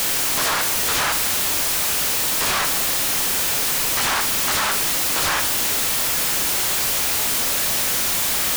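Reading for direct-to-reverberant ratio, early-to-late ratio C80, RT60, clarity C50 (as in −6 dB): 7.0 dB, 16.0 dB, 0.50 s, 12.0 dB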